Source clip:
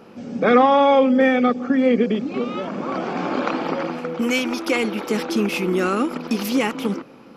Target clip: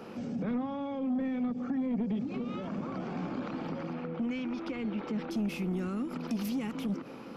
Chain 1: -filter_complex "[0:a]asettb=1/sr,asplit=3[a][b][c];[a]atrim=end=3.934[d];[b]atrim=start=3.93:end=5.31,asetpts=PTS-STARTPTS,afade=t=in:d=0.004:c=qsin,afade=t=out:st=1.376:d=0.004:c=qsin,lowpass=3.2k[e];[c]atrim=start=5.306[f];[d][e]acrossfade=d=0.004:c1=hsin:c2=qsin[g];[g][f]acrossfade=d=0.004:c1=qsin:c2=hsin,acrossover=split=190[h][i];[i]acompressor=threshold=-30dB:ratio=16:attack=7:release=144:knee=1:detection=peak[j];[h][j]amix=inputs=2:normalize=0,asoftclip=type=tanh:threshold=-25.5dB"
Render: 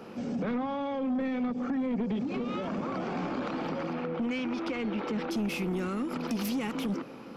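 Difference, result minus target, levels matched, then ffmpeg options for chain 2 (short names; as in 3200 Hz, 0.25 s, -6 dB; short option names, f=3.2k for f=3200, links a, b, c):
compressor: peak gain reduction -7 dB
-filter_complex "[0:a]asettb=1/sr,asplit=3[a][b][c];[a]atrim=end=3.934[d];[b]atrim=start=3.93:end=5.31,asetpts=PTS-STARTPTS,afade=t=in:d=0.004:c=qsin,afade=t=out:st=1.376:d=0.004:c=qsin,lowpass=3.2k[e];[c]atrim=start=5.306[f];[d][e]acrossfade=d=0.004:c1=hsin:c2=qsin[g];[g][f]acrossfade=d=0.004:c1=qsin:c2=hsin,acrossover=split=190[h][i];[i]acompressor=threshold=-37.5dB:ratio=16:attack=7:release=144:knee=1:detection=peak[j];[h][j]amix=inputs=2:normalize=0,asoftclip=type=tanh:threshold=-25.5dB"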